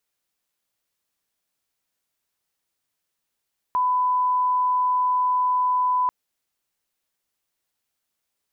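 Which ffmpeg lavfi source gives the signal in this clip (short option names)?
-f lavfi -i "sine=f=1000:d=2.34:r=44100,volume=0.06dB"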